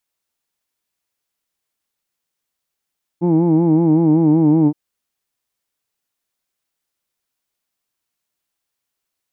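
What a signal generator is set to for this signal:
vowel by formant synthesis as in who'd, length 1.52 s, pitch 168 Hz, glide −1.5 semitones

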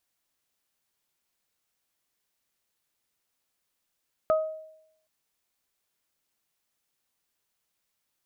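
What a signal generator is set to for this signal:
harmonic partials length 0.77 s, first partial 630 Hz, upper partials −6.5 dB, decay 0.78 s, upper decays 0.32 s, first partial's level −18 dB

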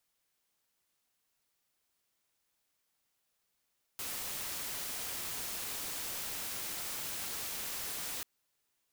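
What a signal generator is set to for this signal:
noise white, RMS −39.5 dBFS 4.24 s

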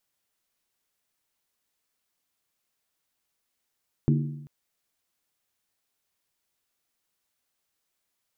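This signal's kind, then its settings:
struck skin length 0.39 s, lowest mode 146 Hz, decay 0.90 s, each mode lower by 4.5 dB, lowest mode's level −17.5 dB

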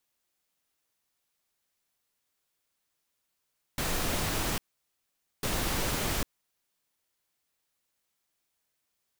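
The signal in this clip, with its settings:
noise bursts pink, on 0.80 s, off 0.85 s, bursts 2, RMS −30 dBFS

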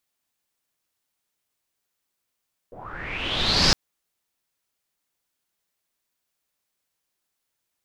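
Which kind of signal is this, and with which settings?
filter sweep on noise pink, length 1.01 s lowpass, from 450 Hz, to 5,200 Hz, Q 6.9, linear, gain ramp +25.5 dB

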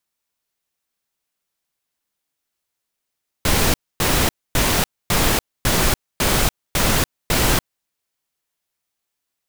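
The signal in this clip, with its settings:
noise bursts pink, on 0.29 s, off 0.26 s, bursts 8, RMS −17 dBFS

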